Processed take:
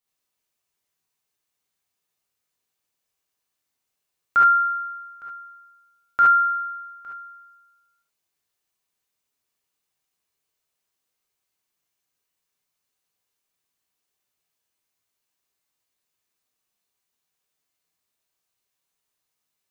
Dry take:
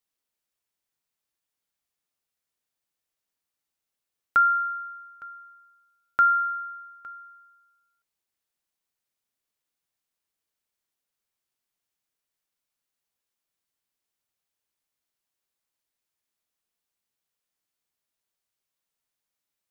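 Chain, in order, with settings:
reverb whose tail is shaped and stops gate 90 ms rising, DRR −5.5 dB
level −1.5 dB

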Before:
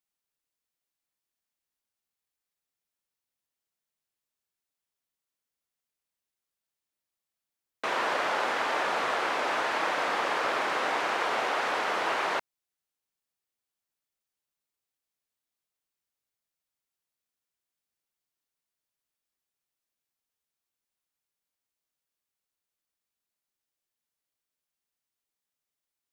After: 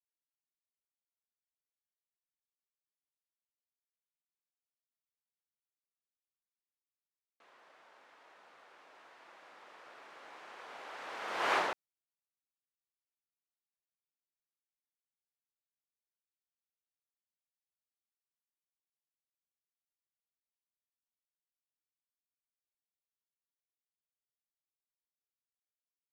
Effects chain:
source passing by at 0:11.54, 19 m/s, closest 1.5 metres

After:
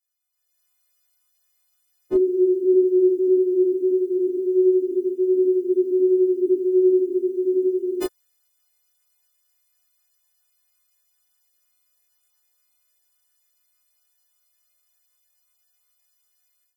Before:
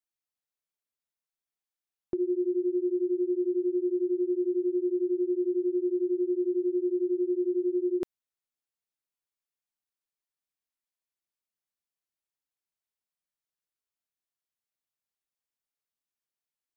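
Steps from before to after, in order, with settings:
every partial snapped to a pitch grid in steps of 3 semitones
multi-voice chorus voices 6, 0.34 Hz, delay 23 ms, depth 2.8 ms
automatic gain control gain up to 14 dB

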